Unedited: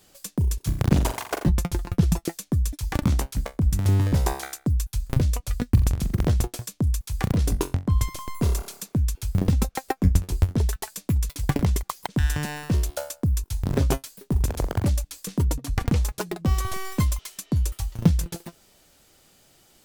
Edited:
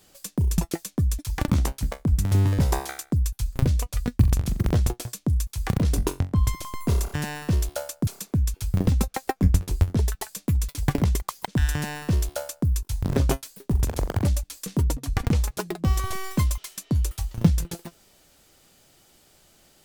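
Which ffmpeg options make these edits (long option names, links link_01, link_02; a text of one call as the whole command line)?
ffmpeg -i in.wav -filter_complex "[0:a]asplit=4[link_01][link_02][link_03][link_04];[link_01]atrim=end=0.582[link_05];[link_02]atrim=start=2.118:end=8.682[link_06];[link_03]atrim=start=12.348:end=13.282[link_07];[link_04]atrim=start=8.678[link_08];[link_05][link_06]acrossfade=duration=0.004:curve1=hsin:curve2=hsin[link_09];[link_09][link_07]acrossfade=duration=0.004:curve1=hsin:curve2=hsin[link_10];[link_10][link_08]acrossfade=duration=0.004:curve1=hsin:curve2=hsin" out.wav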